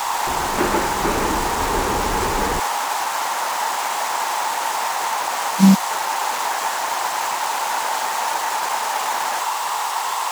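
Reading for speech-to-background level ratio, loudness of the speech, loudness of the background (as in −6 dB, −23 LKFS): 5.0 dB, −21.0 LKFS, −26.0 LKFS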